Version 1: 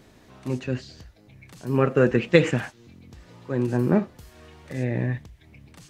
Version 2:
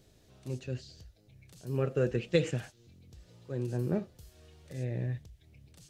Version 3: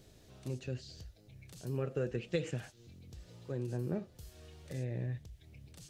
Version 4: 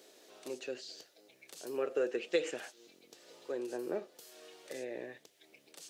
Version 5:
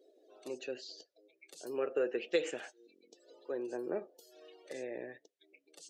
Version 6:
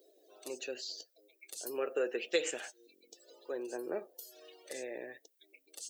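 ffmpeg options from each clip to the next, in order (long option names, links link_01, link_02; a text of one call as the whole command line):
ffmpeg -i in.wav -af "equalizer=frequency=250:width_type=o:width=1:gain=-9,equalizer=frequency=1000:width_type=o:width=1:gain=-12,equalizer=frequency=2000:width_type=o:width=1:gain=-8,volume=-5dB" out.wav
ffmpeg -i in.wav -af "acompressor=threshold=-41dB:ratio=2,volume=2.5dB" out.wav
ffmpeg -i in.wav -af "highpass=frequency=340:width=0.5412,highpass=frequency=340:width=1.3066,volume=5dB" out.wav
ffmpeg -i in.wav -af "afftdn=noise_reduction=26:noise_floor=-56" out.wav
ffmpeg -i in.wav -af "aemphasis=mode=production:type=bsi,volume=1dB" out.wav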